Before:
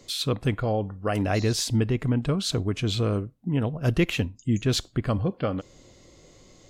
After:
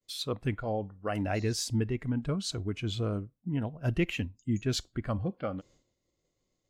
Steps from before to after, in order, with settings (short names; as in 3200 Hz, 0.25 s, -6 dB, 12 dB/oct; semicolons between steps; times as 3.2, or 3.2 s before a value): spectral noise reduction 7 dB; expander -49 dBFS; gain -5.5 dB